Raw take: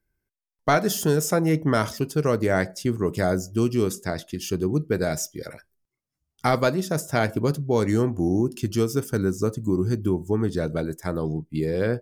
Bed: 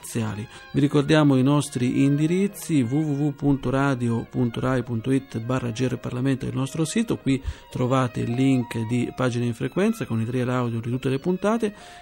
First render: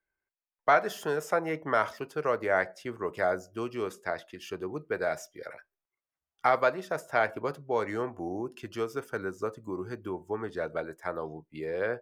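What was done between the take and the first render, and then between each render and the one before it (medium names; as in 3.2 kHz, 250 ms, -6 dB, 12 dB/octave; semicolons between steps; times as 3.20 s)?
three-band isolator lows -20 dB, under 500 Hz, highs -18 dB, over 2.7 kHz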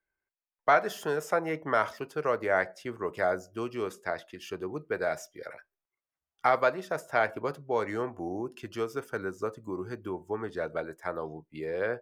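no audible change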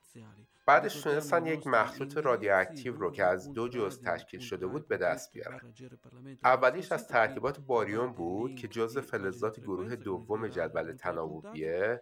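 add bed -25.5 dB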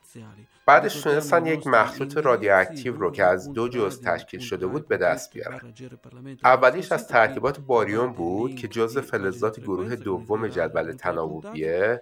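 trim +8.5 dB; peak limiter -3 dBFS, peak gain reduction 1 dB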